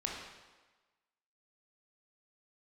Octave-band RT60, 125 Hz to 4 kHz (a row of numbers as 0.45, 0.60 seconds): 1.0, 1.2, 1.2, 1.3, 1.2, 1.1 seconds